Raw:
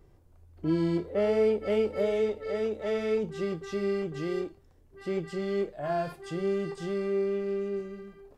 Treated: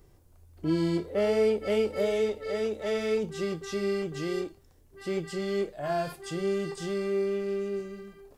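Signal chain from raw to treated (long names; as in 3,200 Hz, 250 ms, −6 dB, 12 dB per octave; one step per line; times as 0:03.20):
high-shelf EQ 3,900 Hz +11 dB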